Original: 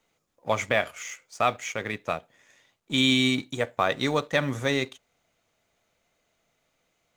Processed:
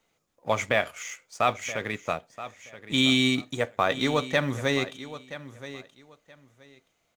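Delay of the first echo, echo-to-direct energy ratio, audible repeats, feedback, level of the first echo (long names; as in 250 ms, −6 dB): 975 ms, −14.5 dB, 2, 20%, −14.5 dB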